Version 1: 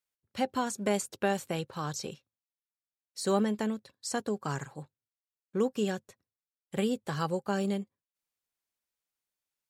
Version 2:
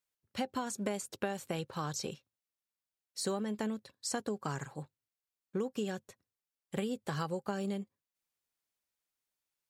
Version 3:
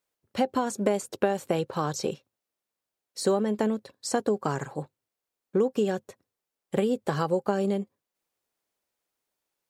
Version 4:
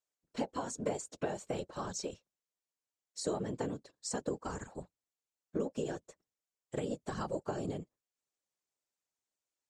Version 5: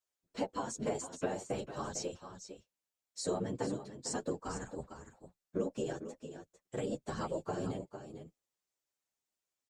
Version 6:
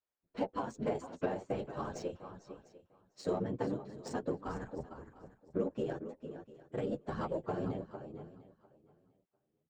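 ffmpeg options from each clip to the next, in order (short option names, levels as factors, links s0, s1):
-af "acompressor=threshold=0.0282:ratio=10"
-af "equalizer=f=480:t=o:w=2.5:g=9,volume=1.5"
-af "afftfilt=real='hypot(re,im)*cos(2*PI*random(0))':imag='hypot(re,im)*sin(2*PI*random(1))':win_size=512:overlap=0.75,lowpass=f=7300:t=q:w=2.6,volume=0.531"
-filter_complex "[0:a]aecho=1:1:452:0.299,asplit=2[s0][s1];[s1]adelay=9.1,afreqshift=0.95[s2];[s0][s2]amix=inputs=2:normalize=1,volume=1.41"
-af "adynamicsmooth=sensitivity=5.5:basefreq=2200,aecho=1:1:699|1398:0.106|0.0201,volume=1.12"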